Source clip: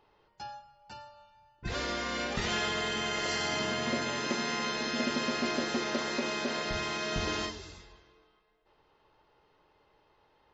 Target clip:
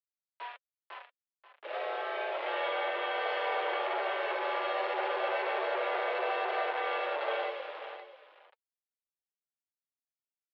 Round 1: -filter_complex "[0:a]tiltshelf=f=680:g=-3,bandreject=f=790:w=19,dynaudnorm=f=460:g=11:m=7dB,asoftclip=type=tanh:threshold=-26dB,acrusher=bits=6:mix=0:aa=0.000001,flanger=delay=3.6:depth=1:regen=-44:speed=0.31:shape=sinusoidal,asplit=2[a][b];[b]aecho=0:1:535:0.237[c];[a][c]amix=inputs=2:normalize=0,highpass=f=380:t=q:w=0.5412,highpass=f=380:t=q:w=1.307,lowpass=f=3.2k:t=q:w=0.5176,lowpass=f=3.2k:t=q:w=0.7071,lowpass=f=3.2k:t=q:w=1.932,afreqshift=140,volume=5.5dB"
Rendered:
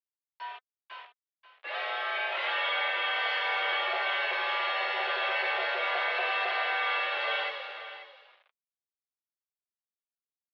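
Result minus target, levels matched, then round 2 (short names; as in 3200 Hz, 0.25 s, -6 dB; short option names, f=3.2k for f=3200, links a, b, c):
500 Hz band -8.0 dB
-filter_complex "[0:a]tiltshelf=f=680:g=9,bandreject=f=790:w=19,dynaudnorm=f=460:g=11:m=7dB,asoftclip=type=tanh:threshold=-26dB,acrusher=bits=6:mix=0:aa=0.000001,flanger=delay=3.6:depth=1:regen=-44:speed=0.31:shape=sinusoidal,asplit=2[a][b];[b]aecho=0:1:535:0.237[c];[a][c]amix=inputs=2:normalize=0,highpass=f=380:t=q:w=0.5412,highpass=f=380:t=q:w=1.307,lowpass=f=3.2k:t=q:w=0.5176,lowpass=f=3.2k:t=q:w=0.7071,lowpass=f=3.2k:t=q:w=1.932,afreqshift=140,volume=5.5dB"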